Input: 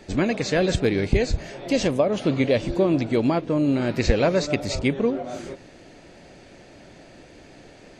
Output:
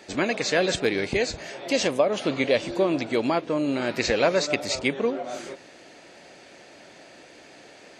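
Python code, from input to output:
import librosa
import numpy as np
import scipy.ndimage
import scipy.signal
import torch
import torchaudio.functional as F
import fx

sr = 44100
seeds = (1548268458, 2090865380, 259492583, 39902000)

y = fx.highpass(x, sr, hz=630.0, slope=6)
y = y * librosa.db_to_amplitude(3.0)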